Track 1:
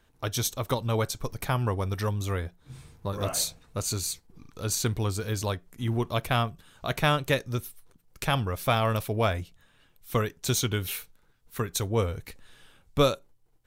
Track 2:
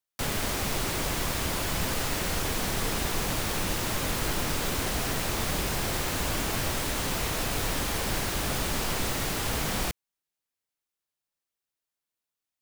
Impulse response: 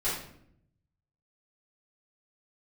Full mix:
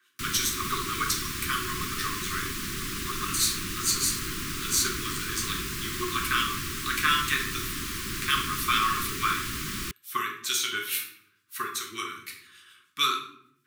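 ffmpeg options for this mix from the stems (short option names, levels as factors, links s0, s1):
-filter_complex "[0:a]highpass=750,acrossover=split=1800[s0][s1];[s0]aeval=exprs='val(0)*(1-0.7/2+0.7/2*cos(2*PI*6.8*n/s))':c=same[s2];[s1]aeval=exprs='val(0)*(1-0.7/2-0.7/2*cos(2*PI*6.8*n/s))':c=same[s3];[s2][s3]amix=inputs=2:normalize=0,volume=1.41,asplit=2[s4][s5];[s5]volume=0.596[s6];[1:a]lowshelf=f=88:g=-6,volume=0.75[s7];[2:a]atrim=start_sample=2205[s8];[s6][s8]afir=irnorm=-1:irlink=0[s9];[s4][s7][s9]amix=inputs=3:normalize=0,asuperstop=centerf=650:order=20:qfactor=1"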